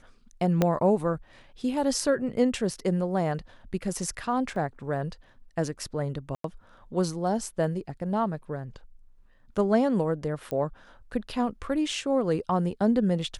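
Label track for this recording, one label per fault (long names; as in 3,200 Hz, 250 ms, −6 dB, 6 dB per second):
0.620000	0.620000	click −9 dBFS
4.560000	4.560000	drop-out 2 ms
6.350000	6.440000	drop-out 93 ms
10.510000	10.510000	click −18 dBFS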